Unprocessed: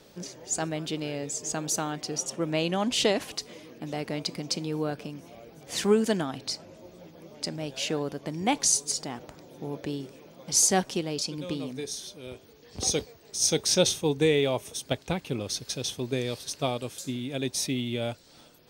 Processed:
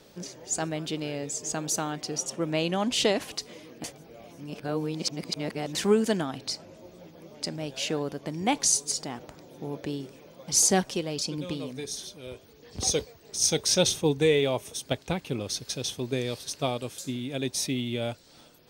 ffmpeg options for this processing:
ffmpeg -i in.wav -filter_complex "[0:a]asplit=3[link_01][link_02][link_03];[link_01]afade=type=out:start_time=10.11:duration=0.02[link_04];[link_02]aphaser=in_gain=1:out_gain=1:delay=2:decay=0.27:speed=1.5:type=sinusoidal,afade=type=in:start_time=10.11:duration=0.02,afade=type=out:start_time=14.41:duration=0.02[link_05];[link_03]afade=type=in:start_time=14.41:duration=0.02[link_06];[link_04][link_05][link_06]amix=inputs=3:normalize=0,asplit=3[link_07][link_08][link_09];[link_07]atrim=end=3.842[link_10];[link_08]atrim=start=3.838:end=5.752,asetpts=PTS-STARTPTS,areverse[link_11];[link_09]atrim=start=5.748[link_12];[link_10][link_11]acrossfade=duration=0.004:curve1=hsin:curve2=hsin[link_13];[link_13][link_12]acrossfade=duration=0.004:curve1=hsin:curve2=hsin" out.wav

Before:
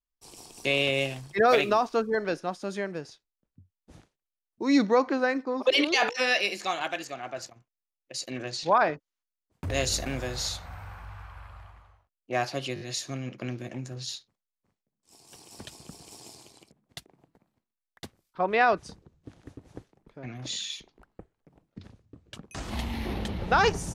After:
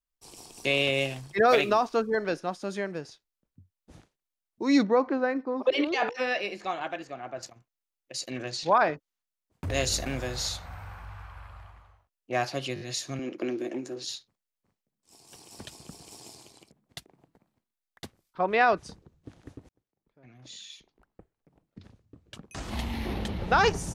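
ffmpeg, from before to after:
ffmpeg -i in.wav -filter_complex "[0:a]asettb=1/sr,asplit=3[link_01][link_02][link_03];[link_01]atrim=end=4.834[link_04];[link_02]atrim=start=4.83:end=7.43,asetpts=PTS-STARTPTS,afade=type=in:duration=0.004:curve=qsin,afade=type=out:start_time=2.596:duration=0.004:curve=qsin,lowpass=frequency=1300:poles=1[link_05];[link_03]atrim=start=7.426[link_06];[link_04][link_05]acrossfade=duration=0.004:curve1=hsin:curve2=qsin[link_07];[link_07][link_06]acrossfade=duration=0.004:curve1=qsin:curve2=hsin,asettb=1/sr,asplit=3[link_08][link_09][link_10];[link_08]atrim=end=13.194[link_11];[link_09]atrim=start=13.19:end=14.1,asetpts=PTS-STARTPTS,afade=type=in:duration=0.004:curve=qsin,afade=type=out:start_time=0.906:duration=0.004:curve=qsin,highpass=frequency=330:width_type=q:width=4[link_12];[link_10]atrim=start=14.096[link_13];[link_11][link_12]acrossfade=duration=0.004:curve1=hsin:curve2=qsin[link_14];[link_14][link_13]acrossfade=duration=0.004:curve1=qsin:curve2=hsin,asplit=2[link_15][link_16];[link_15]atrim=end=19.69,asetpts=PTS-STARTPTS,afade=type=out:start_time=19.686:duration=0.004:curve=hsin[link_17];[link_16]atrim=start=19.69,asetpts=PTS-STARTPTS,afade=type=in:duration=3.19[link_18];[link_17][link_18]concat=n=2:v=0:a=1" out.wav

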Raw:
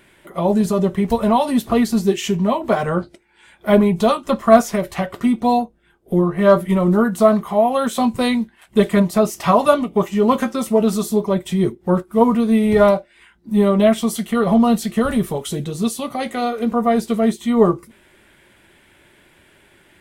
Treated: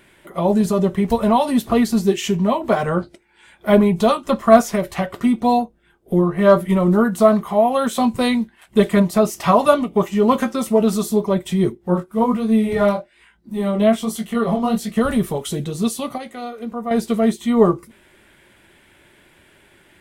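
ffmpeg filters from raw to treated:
ffmpeg -i in.wav -filter_complex "[0:a]asplit=3[link_01][link_02][link_03];[link_01]afade=type=out:start_time=11.77:duration=0.02[link_04];[link_02]flanger=delay=18:depth=6.3:speed=1.2,afade=type=in:start_time=11.77:duration=0.02,afade=type=out:start_time=14.95:duration=0.02[link_05];[link_03]afade=type=in:start_time=14.95:duration=0.02[link_06];[link_04][link_05][link_06]amix=inputs=3:normalize=0,asplit=3[link_07][link_08][link_09];[link_07]atrim=end=16.18,asetpts=PTS-STARTPTS,afade=type=out:start_time=16.05:duration=0.13:curve=log:silence=0.354813[link_10];[link_08]atrim=start=16.18:end=16.91,asetpts=PTS-STARTPTS,volume=-9dB[link_11];[link_09]atrim=start=16.91,asetpts=PTS-STARTPTS,afade=type=in:duration=0.13:curve=log:silence=0.354813[link_12];[link_10][link_11][link_12]concat=n=3:v=0:a=1" out.wav

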